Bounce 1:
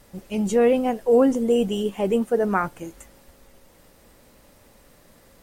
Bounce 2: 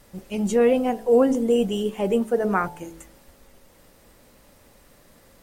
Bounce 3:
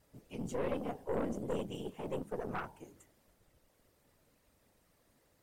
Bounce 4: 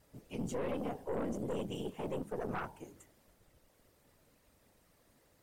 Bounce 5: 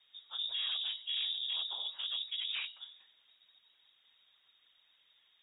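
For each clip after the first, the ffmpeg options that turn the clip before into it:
ffmpeg -i in.wav -af "bandreject=frequency=54.66:width_type=h:width=4,bandreject=frequency=109.32:width_type=h:width=4,bandreject=frequency=163.98:width_type=h:width=4,bandreject=frequency=218.64:width_type=h:width=4,bandreject=frequency=273.3:width_type=h:width=4,bandreject=frequency=327.96:width_type=h:width=4,bandreject=frequency=382.62:width_type=h:width=4,bandreject=frequency=437.28:width_type=h:width=4,bandreject=frequency=491.94:width_type=h:width=4,bandreject=frequency=546.6:width_type=h:width=4,bandreject=frequency=601.26:width_type=h:width=4,bandreject=frequency=655.92:width_type=h:width=4,bandreject=frequency=710.58:width_type=h:width=4,bandreject=frequency=765.24:width_type=h:width=4,bandreject=frequency=819.9:width_type=h:width=4,bandreject=frequency=874.56:width_type=h:width=4,bandreject=frequency=929.22:width_type=h:width=4,bandreject=frequency=983.88:width_type=h:width=4" out.wav
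ffmpeg -i in.wav -af "afftfilt=real='hypot(re,im)*cos(2*PI*random(0))':imag='hypot(re,im)*sin(2*PI*random(1))':win_size=512:overlap=0.75,aeval=exprs='(tanh(12.6*val(0)+0.7)-tanh(0.7))/12.6':channel_layout=same,volume=-7dB" out.wav
ffmpeg -i in.wav -af "alimiter=level_in=6.5dB:limit=-24dB:level=0:latency=1:release=20,volume=-6.5dB,volume=2.5dB" out.wav
ffmpeg -i in.wav -af "lowpass=frequency=3200:width_type=q:width=0.5098,lowpass=frequency=3200:width_type=q:width=0.6013,lowpass=frequency=3200:width_type=q:width=0.9,lowpass=frequency=3200:width_type=q:width=2.563,afreqshift=-3800" out.wav

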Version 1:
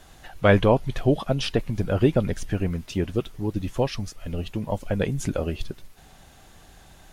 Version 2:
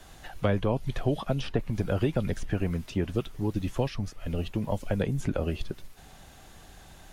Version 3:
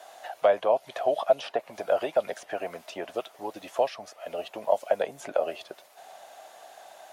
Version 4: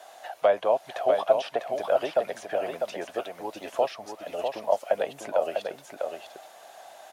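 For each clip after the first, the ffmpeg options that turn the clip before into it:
ffmpeg -i in.wav -filter_complex "[0:a]acrossover=split=260|670|1600|3200[link_01][link_02][link_03][link_04][link_05];[link_01]acompressor=threshold=-26dB:ratio=4[link_06];[link_02]acompressor=threshold=-31dB:ratio=4[link_07];[link_03]acompressor=threshold=-37dB:ratio=4[link_08];[link_04]acompressor=threshold=-47dB:ratio=4[link_09];[link_05]acompressor=threshold=-49dB:ratio=4[link_10];[link_06][link_07][link_08][link_09][link_10]amix=inputs=5:normalize=0" out.wav
ffmpeg -i in.wav -af "highpass=frequency=650:width_type=q:width=4.9" out.wav
ffmpeg -i in.wav -af "aecho=1:1:649:0.531" out.wav

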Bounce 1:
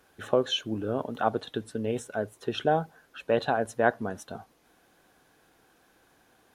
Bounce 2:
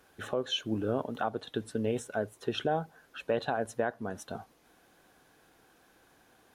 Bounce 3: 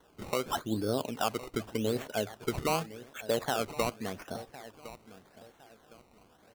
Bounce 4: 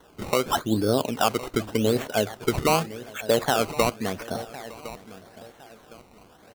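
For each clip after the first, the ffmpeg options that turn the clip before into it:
ffmpeg -i in.wav -af "alimiter=limit=-18dB:level=0:latency=1:release=396" out.wav
ffmpeg -i in.wav -af "aecho=1:1:1060|2120|3180:0.158|0.0491|0.0152,acrusher=samples=18:mix=1:aa=0.000001:lfo=1:lforange=18:lforate=0.86" out.wav
ffmpeg -i in.wav -af "aecho=1:1:911:0.0794,volume=8.5dB" out.wav

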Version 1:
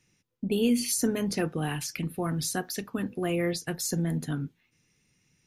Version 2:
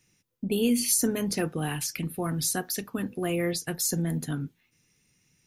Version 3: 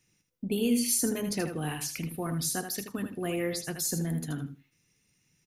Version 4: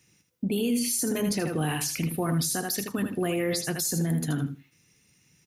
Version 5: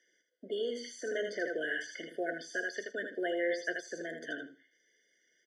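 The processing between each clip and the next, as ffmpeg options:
ffmpeg -i in.wav -af "highshelf=frequency=8200:gain=9" out.wav
ffmpeg -i in.wav -af "aecho=1:1:79|158|237:0.398|0.0677|0.0115,volume=-3.5dB" out.wav
ffmpeg -i in.wav -af "highpass=46,alimiter=level_in=2.5dB:limit=-24dB:level=0:latency=1:release=49,volume=-2.5dB,volume=7.5dB" out.wav
ffmpeg -i in.wav -filter_complex "[0:a]highpass=frequency=430:width=0.5412,highpass=frequency=430:width=1.3066,equalizer=frequency=890:width_type=q:width=4:gain=-5,equalizer=frequency=1600:width_type=q:width=4:gain=5,equalizer=frequency=2600:width_type=q:width=4:gain=-6,equalizer=frequency=4400:width_type=q:width=4:gain=-5,lowpass=frequency=5200:width=0.5412,lowpass=frequency=5200:width=1.3066,acrossover=split=2700[link_01][link_02];[link_02]acompressor=threshold=-45dB:ratio=4:attack=1:release=60[link_03];[link_01][link_03]amix=inputs=2:normalize=0,afftfilt=real='re*eq(mod(floor(b*sr/1024/720),2),0)':imag='im*eq(mod(floor(b*sr/1024/720),2),0)':win_size=1024:overlap=0.75" out.wav

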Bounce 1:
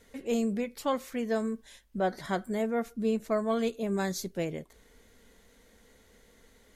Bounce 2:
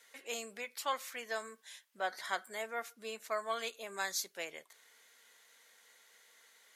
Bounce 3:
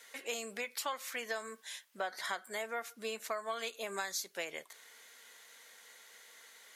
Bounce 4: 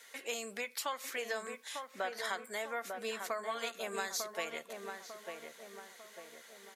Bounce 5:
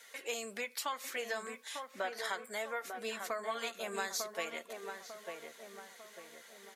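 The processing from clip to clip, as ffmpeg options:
ffmpeg -i in.wav -af "highpass=1100,volume=1.5dB" out.wav
ffmpeg -i in.wav -af "acompressor=threshold=-41dB:ratio=6,volume=6.5dB" out.wav
ffmpeg -i in.wav -filter_complex "[0:a]asplit=2[link_01][link_02];[link_02]adelay=898,lowpass=frequency=1500:poles=1,volume=-4.5dB,asplit=2[link_03][link_04];[link_04]adelay=898,lowpass=frequency=1500:poles=1,volume=0.52,asplit=2[link_05][link_06];[link_06]adelay=898,lowpass=frequency=1500:poles=1,volume=0.52,asplit=2[link_07][link_08];[link_08]adelay=898,lowpass=frequency=1500:poles=1,volume=0.52,asplit=2[link_09][link_10];[link_10]adelay=898,lowpass=frequency=1500:poles=1,volume=0.52,asplit=2[link_11][link_12];[link_12]adelay=898,lowpass=frequency=1500:poles=1,volume=0.52,asplit=2[link_13][link_14];[link_14]adelay=898,lowpass=frequency=1500:poles=1,volume=0.52[link_15];[link_01][link_03][link_05][link_07][link_09][link_11][link_13][link_15]amix=inputs=8:normalize=0" out.wav
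ffmpeg -i in.wav -af "flanger=delay=1.3:depth=4.6:regen=-59:speed=0.39:shape=triangular,volume=4dB" out.wav

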